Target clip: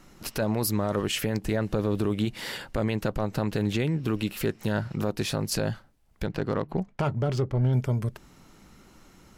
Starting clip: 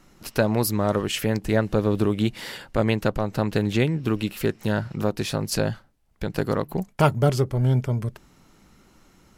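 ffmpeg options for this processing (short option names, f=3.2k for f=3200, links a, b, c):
-filter_complex "[0:a]asplit=2[a][b];[b]acompressor=threshold=-32dB:ratio=6,volume=-1.5dB[c];[a][c]amix=inputs=2:normalize=0,alimiter=limit=-13.5dB:level=0:latency=1:release=16,asettb=1/sr,asplit=3[d][e][f];[d]atrim=end=6.264[g];[e]atrim=start=6.26:end=7.73,asetpts=PTS-STARTPTS,afade=t=in:d=0.004:c=qsin,afade=t=out:st=1.466:d=0.004:c=qsin,adynamicsmooth=sensitivity=3:basefreq=3.3k[h];[f]atrim=start=7.726[i];[g][h]acrossfade=d=0.004:c1=hsin:c2=qsin[j];[j][i]acrossfade=d=0.004:c1=qsin:c2=hsin,volume=-3.5dB"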